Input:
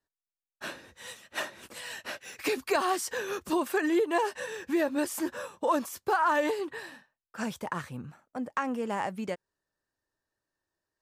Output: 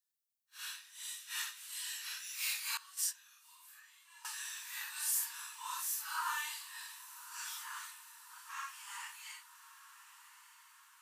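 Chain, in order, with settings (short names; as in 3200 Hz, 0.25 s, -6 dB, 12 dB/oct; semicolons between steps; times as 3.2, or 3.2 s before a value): phase scrambler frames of 0.2 s; rippled Chebyshev high-pass 900 Hz, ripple 3 dB; differentiator; diffused feedback echo 1.258 s, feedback 56%, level -14 dB; 2.77–4.25 gate -38 dBFS, range -19 dB; gain +6 dB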